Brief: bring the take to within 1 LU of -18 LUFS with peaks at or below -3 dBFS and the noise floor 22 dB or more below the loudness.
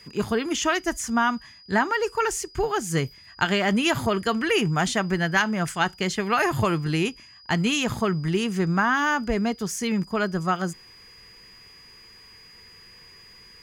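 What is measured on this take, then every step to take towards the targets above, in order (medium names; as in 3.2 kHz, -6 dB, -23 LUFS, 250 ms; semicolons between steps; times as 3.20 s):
steady tone 4.9 kHz; tone level -48 dBFS; loudness -24.5 LUFS; peak level -7.0 dBFS; loudness target -18.0 LUFS
-> band-stop 4.9 kHz, Q 30; trim +6.5 dB; peak limiter -3 dBFS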